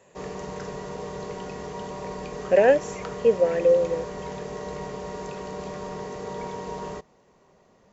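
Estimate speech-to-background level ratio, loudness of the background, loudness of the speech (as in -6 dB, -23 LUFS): 13.5 dB, -35.0 LUFS, -21.5 LUFS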